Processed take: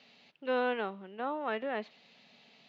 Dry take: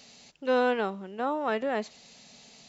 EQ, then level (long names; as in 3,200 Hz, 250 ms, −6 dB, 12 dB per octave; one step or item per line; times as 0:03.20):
high-pass filter 150 Hz 12 dB per octave
low-pass filter 3,300 Hz 24 dB per octave
high-shelf EQ 2,400 Hz +8 dB
−6.5 dB